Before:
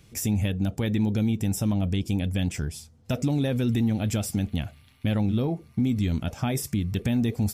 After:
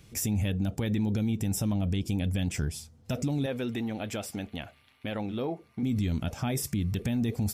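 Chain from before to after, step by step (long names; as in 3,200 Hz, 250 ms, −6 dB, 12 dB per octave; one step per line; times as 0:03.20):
0:03.46–0:05.83: bass and treble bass −15 dB, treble −8 dB
brickwall limiter −21 dBFS, peak gain reduction 5.5 dB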